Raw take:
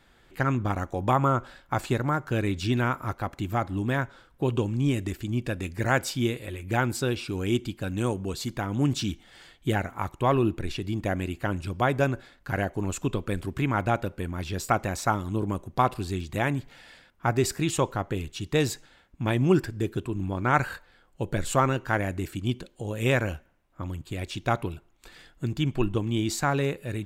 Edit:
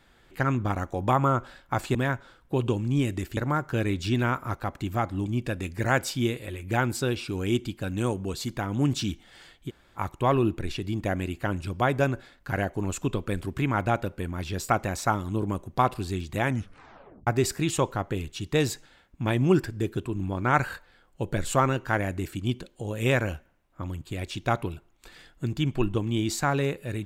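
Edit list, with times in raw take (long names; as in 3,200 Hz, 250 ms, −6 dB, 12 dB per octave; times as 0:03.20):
0:03.84–0:05.26: move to 0:01.95
0:09.68–0:09.97: fill with room tone, crossfade 0.06 s
0:16.45: tape stop 0.82 s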